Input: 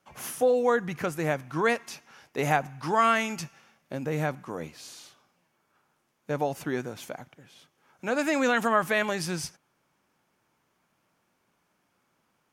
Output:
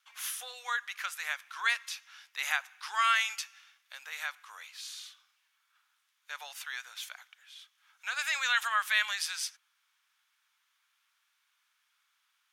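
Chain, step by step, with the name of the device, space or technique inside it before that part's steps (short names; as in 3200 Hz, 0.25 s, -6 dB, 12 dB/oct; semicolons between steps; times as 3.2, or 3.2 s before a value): 7.13–8.23 HPF 440 Hz; headphones lying on a table (HPF 1300 Hz 24 dB/oct; bell 3600 Hz +7.5 dB 0.48 oct)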